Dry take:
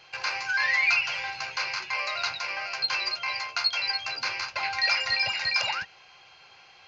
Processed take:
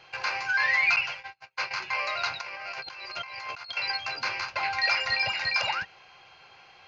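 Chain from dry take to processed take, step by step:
high-shelf EQ 3,500 Hz −9 dB
0:00.96–0:01.71: noise gate −32 dBFS, range −40 dB
0:02.41–0:03.77: compressor whose output falls as the input rises −42 dBFS, ratio −1
level +2.5 dB

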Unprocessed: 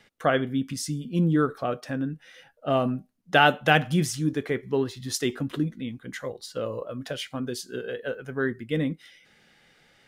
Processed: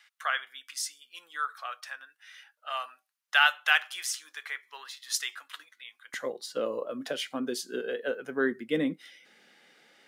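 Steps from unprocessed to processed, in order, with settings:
high-pass filter 1,100 Hz 24 dB per octave, from 0:06.14 220 Hz

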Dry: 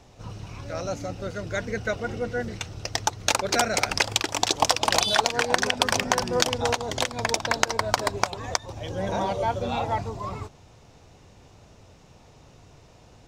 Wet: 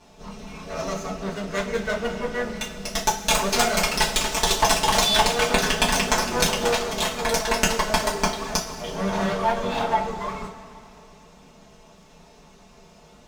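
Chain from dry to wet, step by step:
lower of the sound and its delayed copy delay 4.6 ms
coupled-rooms reverb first 0.27 s, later 2.8 s, from −18 dB, DRR −3.5 dB
level −1 dB

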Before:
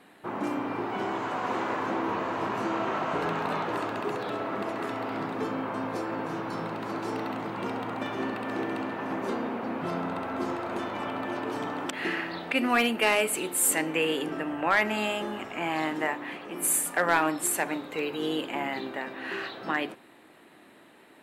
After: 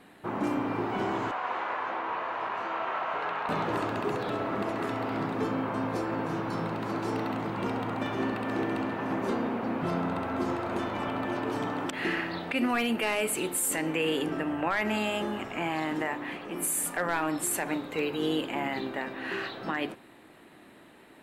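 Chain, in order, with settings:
0:01.31–0:03.49: three-way crossover with the lows and the highs turned down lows −21 dB, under 550 Hz, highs −17 dB, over 3,900 Hz
brickwall limiter −19.5 dBFS, peak gain reduction 7 dB
low-shelf EQ 120 Hz +11.5 dB

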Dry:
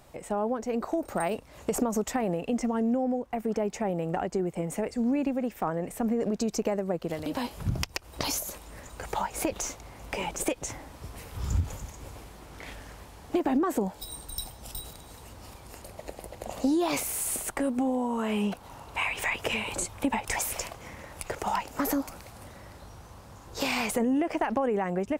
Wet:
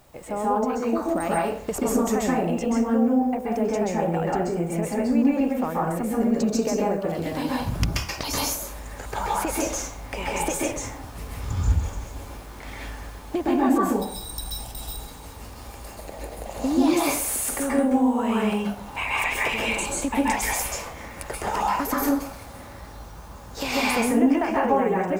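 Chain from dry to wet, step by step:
0:11.27–0:11.97: high-shelf EQ 10,000 Hz −9.5 dB
background noise violet −66 dBFS
dense smooth reverb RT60 0.53 s, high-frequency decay 0.65×, pre-delay 120 ms, DRR −5 dB

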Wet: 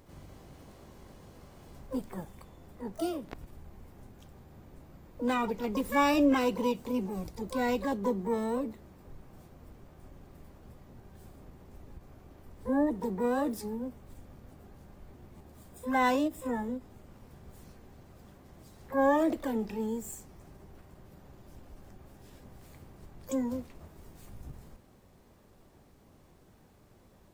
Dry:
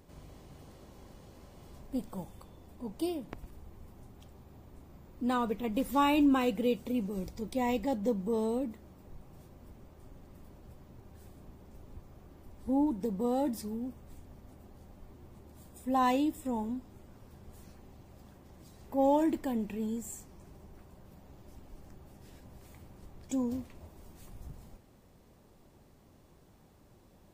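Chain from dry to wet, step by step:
pitch-shifted copies added +12 semitones −7 dB
buffer that repeats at 0:15.37, samples 512, times 2
every ending faded ahead of time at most 360 dB per second

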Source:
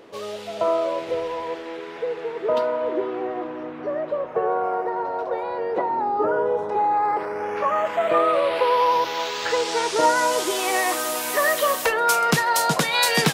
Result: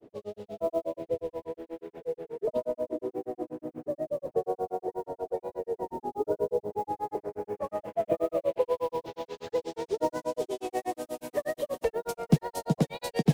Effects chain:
noise that follows the level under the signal 20 dB
drawn EQ curve 120 Hz 0 dB, 710 Hz −8 dB, 1,100 Hz −20 dB
granular cloud 100 ms, grains 8.3 per second, spray 20 ms, pitch spread up and down by 0 semitones
dynamic equaliser 1,400 Hz, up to −6 dB, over −55 dBFS, Q 3
level +4 dB

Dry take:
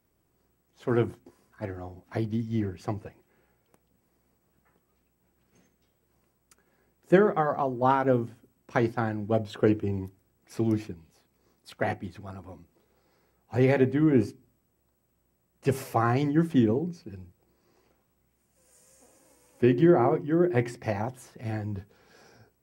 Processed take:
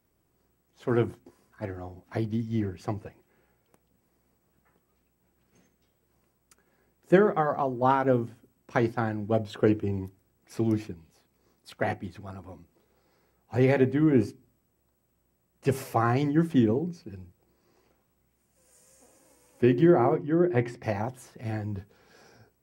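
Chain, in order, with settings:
0:20.15–0:20.83: high-shelf EQ 6,500 Hz −11.5 dB

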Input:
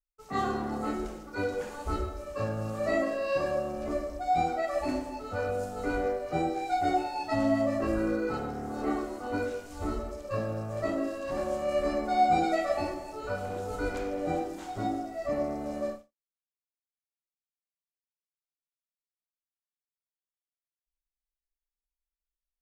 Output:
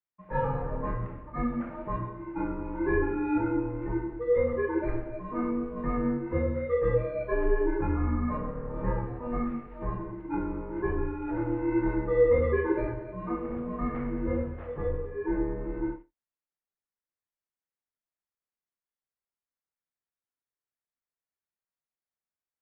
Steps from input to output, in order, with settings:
single-sideband voice off tune −250 Hz 190–2,400 Hz
level +2 dB

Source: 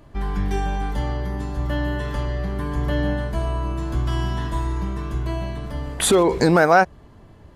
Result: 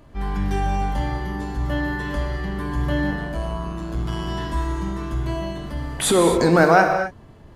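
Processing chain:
0:03.11–0:04.28: amplitude modulation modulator 110 Hz, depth 55%
transient designer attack −4 dB, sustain 0 dB
reverb whose tail is shaped and stops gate 280 ms flat, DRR 4 dB

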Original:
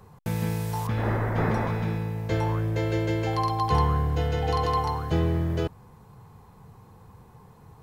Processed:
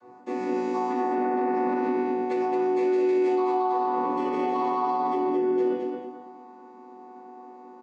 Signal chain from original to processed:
channel vocoder with a chord as carrier minor triad, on B3
0:02.31–0:03.32: high-shelf EQ 3,800 Hz +11 dB
0:04.02–0:05.34: comb filter 7.2 ms, depth 94%
rectangular room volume 96 cubic metres, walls mixed, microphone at 2.3 metres
brickwall limiter −15.5 dBFS, peak gain reduction 14.5 dB
repeating echo 219 ms, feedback 26%, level −5 dB
level −5.5 dB

